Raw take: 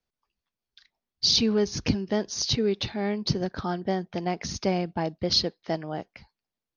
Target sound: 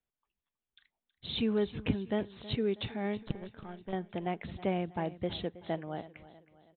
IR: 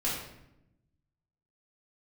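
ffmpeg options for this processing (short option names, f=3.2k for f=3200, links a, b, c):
-filter_complex "[0:a]asettb=1/sr,asplit=3[a][b][c];[a]atrim=end=3.174[d];[b]atrim=start=3.17:end=3.93,asetpts=PTS-STARTPTS,afade=t=in:d=0.004:c=qsin,afade=t=out:st=0.756:d=0.004:c=qsin,aeval=exprs='0.266*(cos(1*acos(clip(val(0)/0.266,-1,1)))-cos(1*PI/2))+0.106*(cos(2*acos(clip(val(0)/0.266,-1,1)))-cos(2*PI/2))+0.0668*(cos(3*acos(clip(val(0)/0.266,-1,1)))-cos(3*PI/2))+0.00376*(cos(8*acos(clip(val(0)/0.266,-1,1)))-cos(8*PI/2))':c=same[e];[c]atrim=start=3.926[f];[d][e]acrossfade=d=0.004:c1=hsin:c2=qsin[g];[g][f]acrossfade=d=0.004:c1=qsin:c2=hsin,aresample=8000,aresample=44100,aecho=1:1:321|642|963|1284:0.141|0.0636|0.0286|0.0129,volume=-6dB"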